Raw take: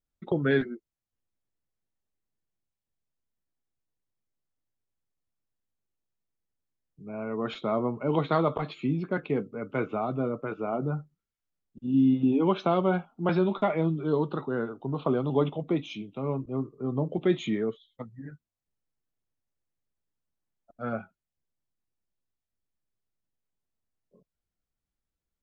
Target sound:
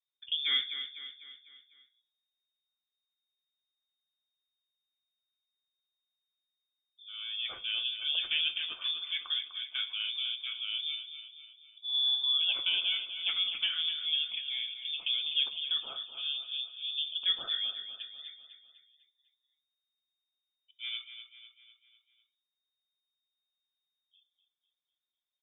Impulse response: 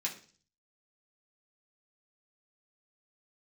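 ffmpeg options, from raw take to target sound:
-filter_complex "[0:a]aecho=1:1:250|500|750|1000|1250:0.316|0.158|0.0791|0.0395|0.0198,asplit=2[s0][s1];[1:a]atrim=start_sample=2205[s2];[s1][s2]afir=irnorm=-1:irlink=0,volume=0.316[s3];[s0][s3]amix=inputs=2:normalize=0,lowpass=f=3100:t=q:w=0.5098,lowpass=f=3100:t=q:w=0.6013,lowpass=f=3100:t=q:w=0.9,lowpass=f=3100:t=q:w=2.563,afreqshift=-3700,volume=0.447"

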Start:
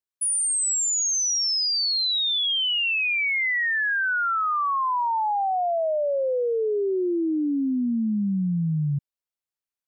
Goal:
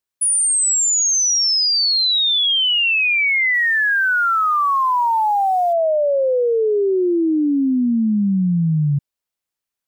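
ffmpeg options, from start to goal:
-filter_complex "[0:a]asplit=3[s0][s1][s2];[s0]afade=t=out:st=3.53:d=0.02[s3];[s1]acrusher=bits=9:mode=log:mix=0:aa=0.000001,afade=t=in:st=3.53:d=0.02,afade=t=out:st=5.72:d=0.02[s4];[s2]afade=t=in:st=5.72:d=0.02[s5];[s3][s4][s5]amix=inputs=3:normalize=0,volume=2.24"

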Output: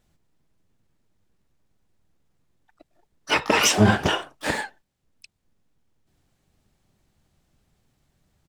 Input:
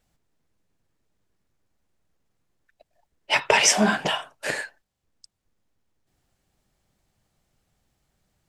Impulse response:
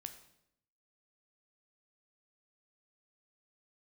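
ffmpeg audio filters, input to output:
-filter_complex "[0:a]alimiter=limit=0.355:level=0:latency=1:release=210,equalizer=f=170:w=0.69:g=5.5,asplit=3[s0][s1][s2];[s1]asetrate=22050,aresample=44100,atempo=2,volume=0.708[s3];[s2]asetrate=88200,aresample=44100,atempo=0.5,volume=0.2[s4];[s0][s3][s4]amix=inputs=3:normalize=0"

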